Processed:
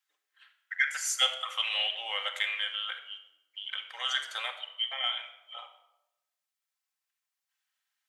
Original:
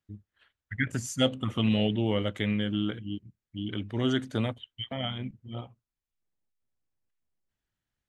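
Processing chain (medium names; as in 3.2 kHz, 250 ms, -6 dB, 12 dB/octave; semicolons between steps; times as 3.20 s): Bessel high-pass 1.3 kHz, order 8; in parallel at -6.5 dB: saturation -22.5 dBFS, distortion -19 dB; on the sum: reverberation RT60 0.90 s, pre-delay 4 ms, DRR 3.5 dB; trim +2.5 dB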